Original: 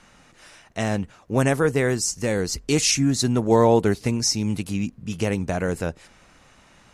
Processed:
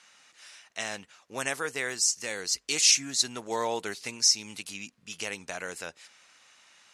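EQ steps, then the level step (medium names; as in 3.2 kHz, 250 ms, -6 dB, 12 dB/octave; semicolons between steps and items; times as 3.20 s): band-pass filter 4.9 kHz, Q 0.57; +1.0 dB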